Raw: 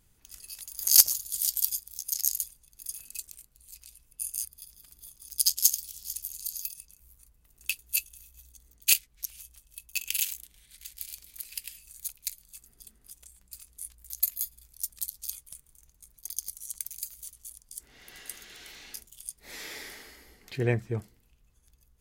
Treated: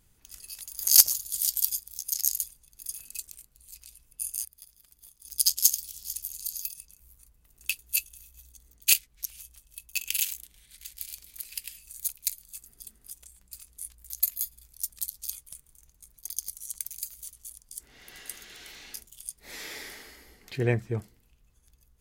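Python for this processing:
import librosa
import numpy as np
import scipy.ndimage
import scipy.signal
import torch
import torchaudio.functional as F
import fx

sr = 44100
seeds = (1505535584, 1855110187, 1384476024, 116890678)

y = fx.law_mismatch(x, sr, coded='A', at=(4.37, 5.25))
y = fx.high_shelf(y, sr, hz=5100.0, db=5.0, at=(11.9, 13.18))
y = y * 10.0 ** (1.0 / 20.0)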